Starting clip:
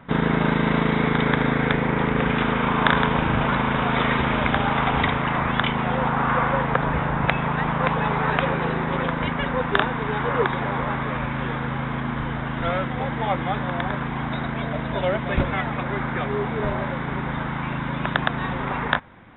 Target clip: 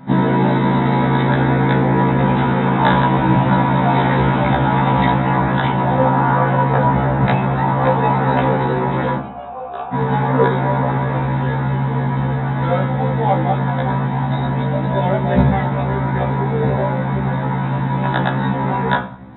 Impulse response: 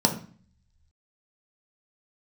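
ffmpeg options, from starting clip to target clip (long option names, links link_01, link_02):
-filter_complex "[0:a]asplit=3[link_01][link_02][link_03];[link_01]afade=type=out:start_time=9.17:duration=0.02[link_04];[link_02]asplit=3[link_05][link_06][link_07];[link_05]bandpass=frequency=730:width_type=q:width=8,volume=0dB[link_08];[link_06]bandpass=frequency=1090:width_type=q:width=8,volume=-6dB[link_09];[link_07]bandpass=frequency=2440:width_type=q:width=8,volume=-9dB[link_10];[link_08][link_09][link_10]amix=inputs=3:normalize=0,afade=type=in:start_time=9.17:duration=0.02,afade=type=out:start_time=9.92:duration=0.02[link_11];[link_03]afade=type=in:start_time=9.92:duration=0.02[link_12];[link_04][link_11][link_12]amix=inputs=3:normalize=0[link_13];[1:a]atrim=start_sample=2205,asetrate=41895,aresample=44100[link_14];[link_13][link_14]afir=irnorm=-1:irlink=0,afftfilt=real='re*1.73*eq(mod(b,3),0)':imag='im*1.73*eq(mod(b,3),0)':win_size=2048:overlap=0.75,volume=-7.5dB"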